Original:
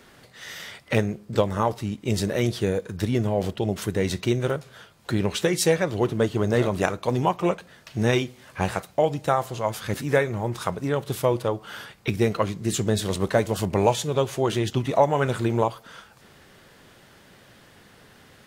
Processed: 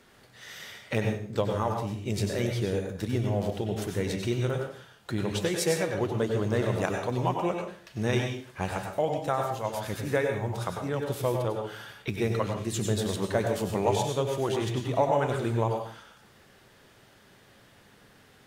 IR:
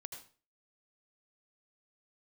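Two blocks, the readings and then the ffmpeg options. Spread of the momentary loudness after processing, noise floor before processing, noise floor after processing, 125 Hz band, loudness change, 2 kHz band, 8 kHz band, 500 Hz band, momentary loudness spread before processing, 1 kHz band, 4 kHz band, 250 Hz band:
8 LU, -53 dBFS, -58 dBFS, -3.5 dB, -4.5 dB, -5.0 dB, -5.0 dB, -4.5 dB, 8 LU, -4.5 dB, -5.0 dB, -5.0 dB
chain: -filter_complex "[1:a]atrim=start_sample=2205,asetrate=35721,aresample=44100[s0];[0:a][s0]afir=irnorm=-1:irlink=0,volume=0.794"

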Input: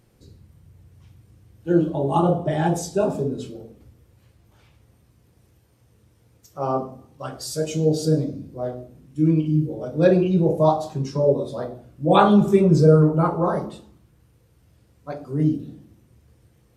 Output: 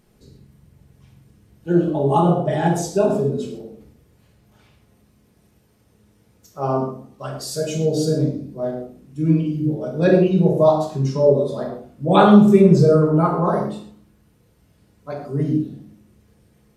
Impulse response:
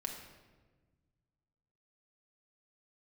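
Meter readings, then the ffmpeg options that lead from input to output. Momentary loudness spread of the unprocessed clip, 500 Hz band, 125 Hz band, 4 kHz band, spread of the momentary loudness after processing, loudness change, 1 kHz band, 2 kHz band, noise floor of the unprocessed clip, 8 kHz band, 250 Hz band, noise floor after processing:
19 LU, +3.0 dB, +2.0 dB, +2.0 dB, 19 LU, +2.5 dB, +2.0 dB, +3.0 dB, -59 dBFS, +2.0 dB, +3.0 dB, -58 dBFS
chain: -filter_complex "[1:a]atrim=start_sample=2205,atrim=end_sample=6174[s0];[0:a][s0]afir=irnorm=-1:irlink=0,volume=1.41"

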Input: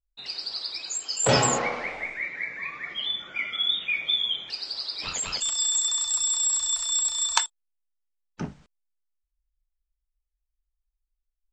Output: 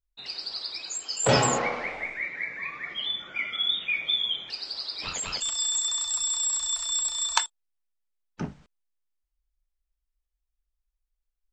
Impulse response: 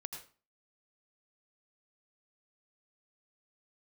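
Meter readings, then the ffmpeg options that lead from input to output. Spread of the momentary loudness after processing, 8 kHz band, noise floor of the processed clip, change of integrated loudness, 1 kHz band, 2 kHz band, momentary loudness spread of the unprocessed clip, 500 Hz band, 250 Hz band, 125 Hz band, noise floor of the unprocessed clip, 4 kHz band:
9 LU, -3.0 dB, -83 dBFS, -1.5 dB, 0.0 dB, -0.5 dB, 11 LU, 0.0 dB, 0.0 dB, 0.0 dB, -83 dBFS, -1.5 dB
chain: -af "highshelf=f=5200:g=-4"

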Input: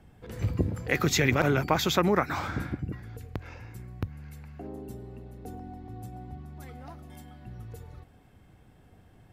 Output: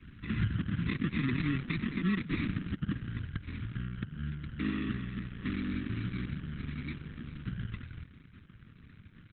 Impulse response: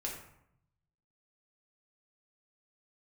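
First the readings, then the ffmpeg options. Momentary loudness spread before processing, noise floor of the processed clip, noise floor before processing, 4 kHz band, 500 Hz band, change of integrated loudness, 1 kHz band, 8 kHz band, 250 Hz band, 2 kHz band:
21 LU, -56 dBFS, -57 dBFS, -10.5 dB, -17.0 dB, -7.0 dB, -16.0 dB, under -40 dB, -0.5 dB, -7.0 dB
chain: -filter_complex "[0:a]acrossover=split=4400[s0][s1];[s0]acontrast=35[s2];[s2][s1]amix=inputs=2:normalize=0,aeval=exprs='0.631*(cos(1*acos(clip(val(0)/0.631,-1,1)))-cos(1*PI/2))+0.0141*(cos(6*acos(clip(val(0)/0.631,-1,1)))-cos(6*PI/2))':c=same,asplit=2[s3][s4];[1:a]atrim=start_sample=2205,lowpass=5200[s5];[s4][s5]afir=irnorm=-1:irlink=0,volume=0.0944[s6];[s3][s6]amix=inputs=2:normalize=0,acompressor=threshold=0.0501:ratio=3,acrusher=samples=29:mix=1:aa=0.000001,asuperstop=centerf=650:order=8:qfactor=0.62,bass=f=250:g=-6,treble=f=4000:g=-14,asplit=2[s7][s8];[s8]adelay=236,lowpass=f=2400:p=1,volume=0.0668,asplit=2[s9][s10];[s10]adelay=236,lowpass=f=2400:p=1,volume=0.39,asplit=2[s11][s12];[s12]adelay=236,lowpass=f=2400:p=1,volume=0.39[s13];[s7][s9][s11][s13]amix=inputs=4:normalize=0,adynamicequalizer=threshold=0.00316:dfrequency=200:dqfactor=1.6:tfrequency=200:tqfactor=1.6:attack=5:release=100:ratio=0.375:range=2.5:mode=boostabove:tftype=bell,alimiter=level_in=1.5:limit=0.0631:level=0:latency=1:release=190,volume=0.668,volume=2.11" -ar 48000 -c:a libopus -b:a 8k

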